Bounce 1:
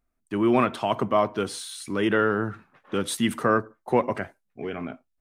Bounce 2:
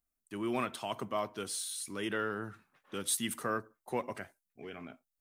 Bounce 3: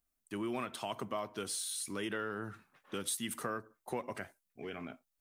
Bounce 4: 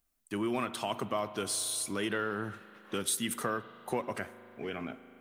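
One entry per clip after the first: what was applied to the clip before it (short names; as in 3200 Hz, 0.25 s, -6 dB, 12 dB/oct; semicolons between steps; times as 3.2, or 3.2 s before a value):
pre-emphasis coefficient 0.8
compressor 3:1, threshold -38 dBFS, peak gain reduction 8.5 dB; gain +2.5 dB
spring tank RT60 3.7 s, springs 38 ms, chirp 35 ms, DRR 14.5 dB; gain +5 dB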